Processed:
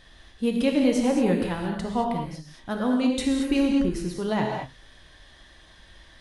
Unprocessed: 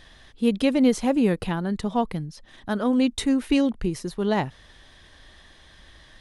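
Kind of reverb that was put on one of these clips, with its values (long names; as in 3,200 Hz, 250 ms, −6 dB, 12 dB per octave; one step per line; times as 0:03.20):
reverb whose tail is shaped and stops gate 250 ms flat, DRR 0.5 dB
level −3.5 dB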